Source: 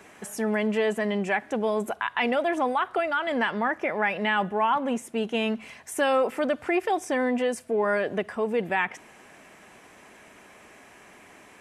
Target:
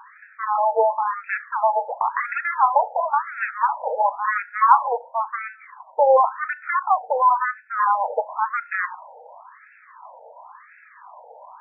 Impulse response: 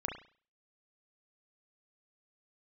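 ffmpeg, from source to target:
-filter_complex "[0:a]aeval=exprs='0.251*(cos(1*acos(clip(val(0)/0.251,-1,1)))-cos(1*PI/2))+0.0794*(cos(7*acos(clip(val(0)/0.251,-1,1)))-cos(7*PI/2))':c=same,highpass=f=360:w=0.5412,highpass=f=360:w=1.3066,equalizer=f=450:t=q:w=4:g=7,equalizer=f=670:t=q:w=4:g=-3,equalizer=f=960:t=q:w=4:g=7,equalizer=f=1.5k:t=q:w=4:g=-4,equalizer=f=2.3k:t=q:w=4:g=-7,lowpass=f=2.4k:w=0.5412,lowpass=f=2.4k:w=1.3066,asplit=2[a][b];[1:a]atrim=start_sample=2205,lowpass=f=1.8k:w=0.5412,lowpass=f=1.8k:w=1.3066[c];[b][c]afir=irnorm=-1:irlink=0,volume=-13dB[d];[a][d]amix=inputs=2:normalize=0,afftfilt=real='re*between(b*sr/1024,640*pow(1900/640,0.5+0.5*sin(2*PI*0.95*pts/sr))/1.41,640*pow(1900/640,0.5+0.5*sin(2*PI*0.95*pts/sr))*1.41)':imag='im*between(b*sr/1024,640*pow(1900/640,0.5+0.5*sin(2*PI*0.95*pts/sr))/1.41,640*pow(1900/640,0.5+0.5*sin(2*PI*0.95*pts/sr))*1.41)':win_size=1024:overlap=0.75,volume=9dB"

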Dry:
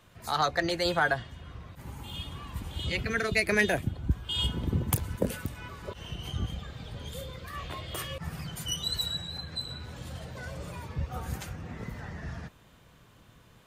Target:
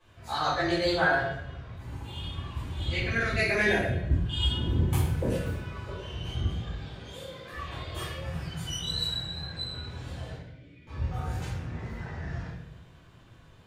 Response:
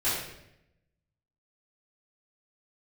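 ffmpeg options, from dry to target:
-filter_complex "[0:a]asettb=1/sr,asplit=3[a][b][c];[a]atrim=end=6.774[d];[b]atrim=start=6.77:end=7.53,asetpts=PTS-STARTPTS,afade=t=in:d=0.004:c=qsin,afade=t=out:st=0.756:d=0.004:c=qsin,highpass=210[e];[c]atrim=start=7.526[f];[d][e]acrossfade=d=0.004:c1=hsin:c2=qsin[g];[g][f]acrossfade=d=0.004:c1=qsin:c2=hsin,equalizer=f=14k:w=0.64:g=-10,asettb=1/sr,asplit=3[h][i][j];[h]atrim=end=10.344[k];[i]atrim=start=10.34:end=10.87,asetpts=PTS-STARTPTS,afade=t=in:d=0.004:c=qsin,afade=t=out:st=0.526:d=0.004:c=qsin,asplit=3[l][m][n];[l]bandpass=f=270:t=q:w=8,volume=0dB[o];[m]bandpass=f=2.29k:t=q:w=8,volume=-6dB[p];[n]bandpass=f=3.01k:t=q:w=8,volume=-9dB[q];[o][p][q]amix=inputs=3:normalize=0[r];[j]atrim=start=10.866[s];[k][r]acrossfade=d=0.004:c1=hsin:c2=qsin[t];[t][s]acrossfade=d=0.004:c1=qsin:c2=hsin[u];[1:a]atrim=start_sample=2205[v];[u][v]afir=irnorm=-1:irlink=0,volume=-9dB"

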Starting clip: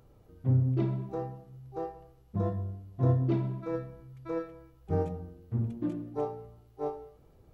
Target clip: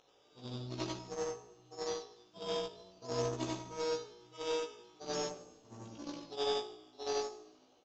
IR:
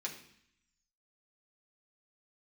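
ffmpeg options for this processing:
-filter_complex "[0:a]afftfilt=real='re':imag='-im':win_size=8192:overlap=0.75,highpass=610,aeval=exprs='0.0266*(cos(1*acos(clip(val(0)/0.0266,-1,1)))-cos(1*PI/2))+0.000266*(cos(2*acos(clip(val(0)/0.0266,-1,1)))-cos(2*PI/2))+0.00106*(cos(5*acos(clip(val(0)/0.0266,-1,1)))-cos(5*PI/2))+0.00299*(cos(7*acos(clip(val(0)/0.0266,-1,1)))-cos(7*PI/2))':c=same,asplit=2[a][b];[b]acompressor=threshold=-59dB:ratio=8,volume=2dB[c];[a][c]amix=inputs=2:normalize=0,acrusher=samples=8:mix=1:aa=0.000001:lfo=1:lforange=4.8:lforate=0.5,aexciter=amount=5.3:drive=4.6:freq=2.9k,asoftclip=type=hard:threshold=-29.5dB,aemphasis=mode=reproduction:type=75fm,asplit=2[d][e];[e]adelay=16,volume=-2.5dB[f];[d][f]amix=inputs=2:normalize=0,asplit=2[g][h];[h]asplit=3[i][j][k];[i]adelay=146,afreqshift=-58,volume=-21.5dB[l];[j]adelay=292,afreqshift=-116,volume=-28.4dB[m];[k]adelay=438,afreqshift=-174,volume=-35.4dB[n];[l][m][n]amix=inputs=3:normalize=0[o];[g][o]amix=inputs=2:normalize=0,aresample=16000,aresample=44100,asetrate=42336,aresample=44100,volume=4.5dB"

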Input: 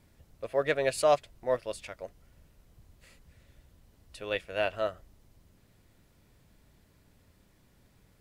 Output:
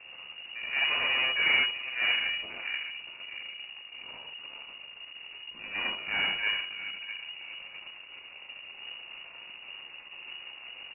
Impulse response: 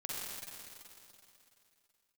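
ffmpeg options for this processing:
-filter_complex "[0:a]aeval=exprs='val(0)+0.5*0.015*sgn(val(0))':c=same,equalizer=f=1.3k:w=2.2:g=-5,atempo=0.75,asplit=2[a][b];[b]adelay=636,lowpass=f=1.4k:p=1,volume=-10dB,asplit=2[c][d];[d]adelay=636,lowpass=f=1.4k:p=1,volume=0.46,asplit=2[e][f];[f]adelay=636,lowpass=f=1.4k:p=1,volume=0.46,asplit=2[g][h];[h]adelay=636,lowpass=f=1.4k:p=1,volume=0.46,asplit=2[i][j];[j]adelay=636,lowpass=f=1.4k:p=1,volume=0.46[k];[a][c][e][g][i][k]amix=inputs=6:normalize=0[l];[1:a]atrim=start_sample=2205,afade=t=out:st=0.2:d=0.01,atrim=end_sample=9261[m];[l][m]afir=irnorm=-1:irlink=0,aeval=exprs='0.2*(cos(1*acos(clip(val(0)/0.2,-1,1)))-cos(1*PI/2))+0.0398*(cos(8*acos(clip(val(0)/0.2,-1,1)))-cos(8*PI/2))':c=same,lowpass=f=2.5k:t=q:w=0.5098,lowpass=f=2.5k:t=q:w=0.6013,lowpass=f=2.5k:t=q:w=0.9,lowpass=f=2.5k:t=q:w=2.563,afreqshift=-2900,volume=-2dB"

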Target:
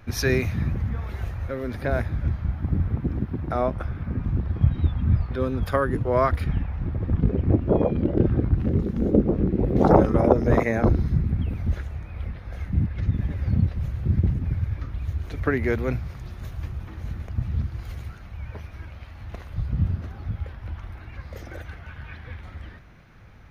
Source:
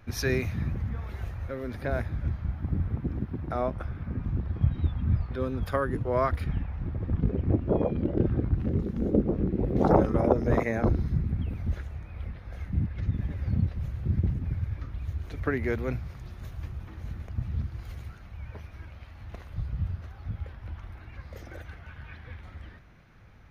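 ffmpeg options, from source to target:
-filter_complex "[0:a]asettb=1/sr,asplit=3[a][b][c];[a]atrim=end=19.704[d];[b]atrim=start=19.7:end=20.25,asetpts=PTS-STARTPTS,afade=t=in:d=0.004:c=qsin,afade=t=out:st=0.546:d=0.004:c=qsin,equalizer=f=240:w=0.82:g=9.5[e];[c]atrim=start=20.246[f];[d][e]acrossfade=d=0.004:c1=hsin:c2=qsin[g];[g][f]acrossfade=d=0.004:c1=qsin:c2=hsin,volume=5dB"

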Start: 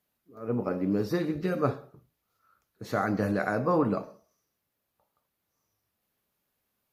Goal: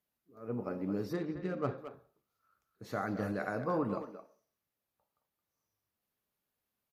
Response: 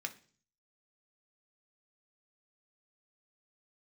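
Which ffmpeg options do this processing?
-filter_complex "[0:a]asettb=1/sr,asplit=3[a][b][c];[a]atrim=end=1.134[d];[b]atrim=start=1.13:end=1.78,asetpts=PTS-STARTPTS,afade=t=in:d=0.004:c=qsin,afade=t=out:st=0.646:d=0.004:c=qsin,adynamicsmooth=sensitivity=6.5:basefreq=2.3k[e];[c]atrim=start=1.776[f];[d][e]acrossfade=d=0.004:c1=hsin:c2=qsin[g];[g][f]acrossfade=d=0.004:c1=qsin:c2=hsin,asplit=2[h][i];[i]adelay=220,highpass=300,lowpass=3.4k,asoftclip=type=hard:threshold=-19.5dB,volume=-10dB[j];[h][j]amix=inputs=2:normalize=0,volume=-8dB"

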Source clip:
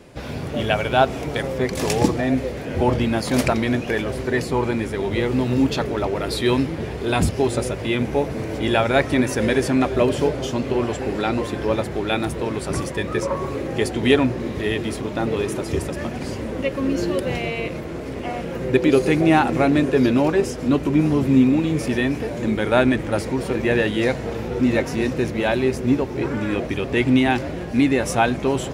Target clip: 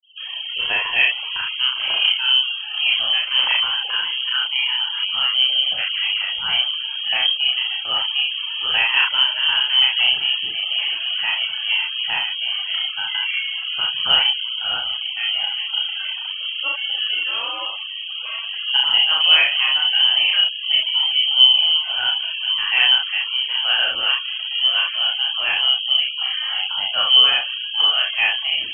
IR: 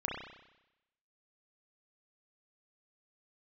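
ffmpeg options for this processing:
-filter_complex "[1:a]atrim=start_sample=2205,atrim=end_sample=3969[a];[0:a][a]afir=irnorm=-1:irlink=0,afftfilt=real='re*gte(hypot(re,im),0.0355)':imag='im*gte(hypot(re,im),0.0355)':win_size=1024:overlap=0.75,lowpass=f=2.8k:t=q:w=0.5098,lowpass=f=2.8k:t=q:w=0.6013,lowpass=f=2.8k:t=q:w=0.9,lowpass=f=2.8k:t=q:w=2.563,afreqshift=-3300,volume=-3dB"

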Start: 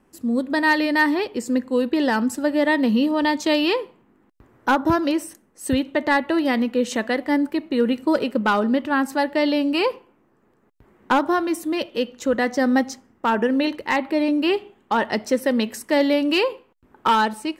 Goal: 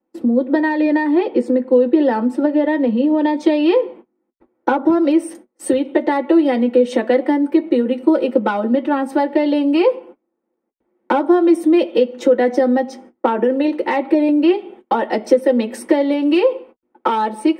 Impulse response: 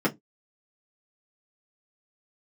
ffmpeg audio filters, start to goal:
-filter_complex "[0:a]agate=range=-27dB:threshold=-47dB:ratio=16:detection=peak,asetnsamples=n=441:p=0,asendcmd='3.37 highshelf g -2.5;4.98 highshelf g 4',highshelf=f=5.6k:g=-9.5,acompressor=threshold=-27dB:ratio=12[a];[1:a]atrim=start_sample=2205,atrim=end_sample=3087,asetrate=74970,aresample=44100[b];[a][b]afir=irnorm=-1:irlink=0"

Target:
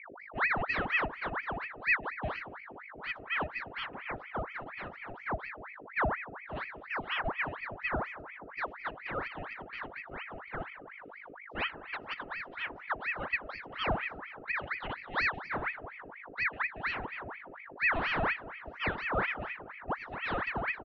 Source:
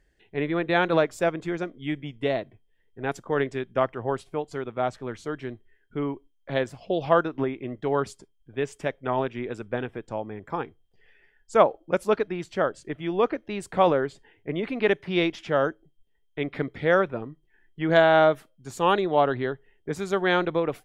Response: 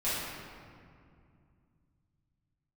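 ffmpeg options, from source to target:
-filter_complex "[0:a]asplit=3[a][b][c];[a]bandpass=f=300:t=q:w=8,volume=0dB[d];[b]bandpass=f=870:t=q:w=8,volume=-6dB[e];[c]bandpass=f=2.24k:t=q:w=8,volume=-9dB[f];[d][e][f]amix=inputs=3:normalize=0,aecho=1:1:3.2:0.82,asplit=2[g][h];[1:a]atrim=start_sample=2205,lowpass=2.4k[i];[h][i]afir=irnorm=-1:irlink=0,volume=-21dB[j];[g][j]amix=inputs=2:normalize=0,aeval=exprs='val(0)+0.00562*(sin(2*PI*50*n/s)+sin(2*PI*2*50*n/s)/2+sin(2*PI*3*50*n/s)/3+sin(2*PI*4*50*n/s)/4+sin(2*PI*5*50*n/s)/5)':c=same,lowpass=f=3.7k:w=0.5412,lowpass=f=3.7k:w=1.3066,aeval=exprs='val(0)*sin(2*PI*1300*n/s+1300*0.75/4.2*sin(2*PI*4.2*n/s))':c=same"

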